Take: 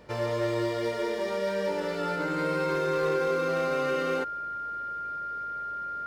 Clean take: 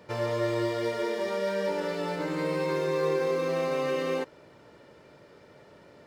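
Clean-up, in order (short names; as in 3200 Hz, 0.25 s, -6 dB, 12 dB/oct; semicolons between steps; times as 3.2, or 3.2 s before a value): clip repair -20.5 dBFS; de-hum 54.7 Hz, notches 5; notch 1400 Hz, Q 30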